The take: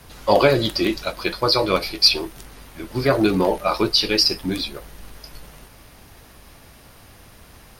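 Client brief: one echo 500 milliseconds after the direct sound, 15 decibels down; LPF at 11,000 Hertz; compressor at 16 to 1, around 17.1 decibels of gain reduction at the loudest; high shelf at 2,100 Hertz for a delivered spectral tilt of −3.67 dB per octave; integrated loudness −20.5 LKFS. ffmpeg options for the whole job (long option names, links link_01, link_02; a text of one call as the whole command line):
ffmpeg -i in.wav -af "lowpass=11000,highshelf=frequency=2100:gain=-7,acompressor=threshold=-28dB:ratio=16,aecho=1:1:500:0.178,volume=13.5dB" out.wav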